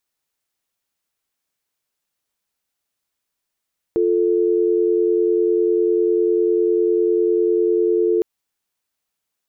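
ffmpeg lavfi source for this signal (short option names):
-f lavfi -i "aevalsrc='0.141*(sin(2*PI*350*t)+sin(2*PI*440*t))':d=4.26:s=44100"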